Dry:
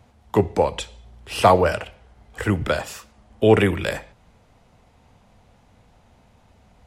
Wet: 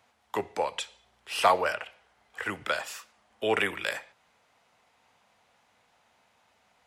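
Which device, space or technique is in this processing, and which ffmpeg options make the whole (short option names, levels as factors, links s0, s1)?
filter by subtraction: -filter_complex "[0:a]asplit=2[s0][s1];[s1]lowpass=1600,volume=-1[s2];[s0][s2]amix=inputs=2:normalize=0,asettb=1/sr,asplit=3[s3][s4][s5];[s3]atrim=end=1.724[s6];[s4]atrim=start=1.72:end=2.46,asetpts=PTS-STARTPTS,afade=t=in:d=0.004:c=qsin,afade=t=out:st=0.736:d=0.004:c=qsin,acrossover=split=3200[s7][s8];[s8]acompressor=threshold=0.00447:ratio=4:attack=1:release=60[s9];[s7][s9]amix=inputs=2:normalize=0[s10];[s5]atrim=start=2.456[s11];[s6][s10]acrossfade=d=0.004:c1=hsin:c2=qsin[s12];[s12][s11]acrossfade=d=0.004:c1=qsin:c2=hsin,volume=0.596"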